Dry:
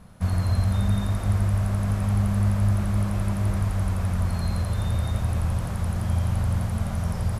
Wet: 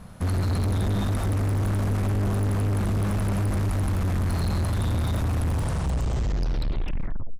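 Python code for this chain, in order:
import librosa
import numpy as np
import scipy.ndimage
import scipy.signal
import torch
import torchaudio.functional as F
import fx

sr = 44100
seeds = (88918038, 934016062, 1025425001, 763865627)

y = fx.tape_stop_end(x, sr, length_s=1.94)
y = np.clip(y, -10.0 ** (-27.0 / 20.0), 10.0 ** (-27.0 / 20.0))
y = y * librosa.db_to_amplitude(5.0)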